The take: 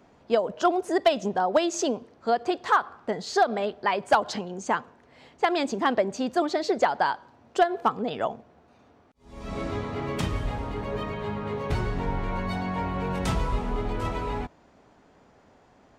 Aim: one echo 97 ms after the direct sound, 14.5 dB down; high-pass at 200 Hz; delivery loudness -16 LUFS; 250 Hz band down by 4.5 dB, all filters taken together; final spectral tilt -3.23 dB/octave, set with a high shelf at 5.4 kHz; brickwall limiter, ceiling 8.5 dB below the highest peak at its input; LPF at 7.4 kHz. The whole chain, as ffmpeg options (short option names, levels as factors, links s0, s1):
-af "highpass=200,lowpass=7400,equalizer=f=250:t=o:g=-4.5,highshelf=f=5400:g=-6.5,alimiter=limit=0.133:level=0:latency=1,aecho=1:1:97:0.188,volume=5.62"